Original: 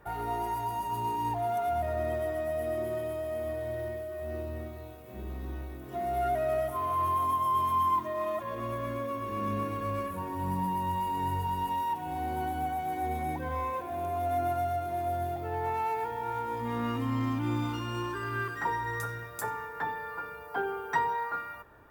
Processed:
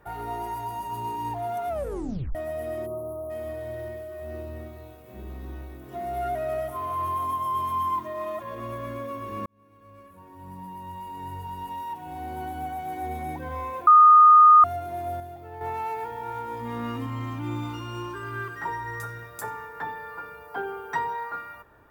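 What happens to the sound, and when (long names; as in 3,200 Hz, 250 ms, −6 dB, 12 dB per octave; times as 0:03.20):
0:01.69: tape stop 0.66 s
0:02.86–0:03.30: time-frequency box erased 1,300–9,200 Hz
0:09.46–0:12.94: fade in
0:13.87–0:14.64: beep over 1,230 Hz −9.5 dBFS
0:15.20–0:15.61: clip gain −7 dB
0:17.06–0:19.16: notch comb filter 250 Hz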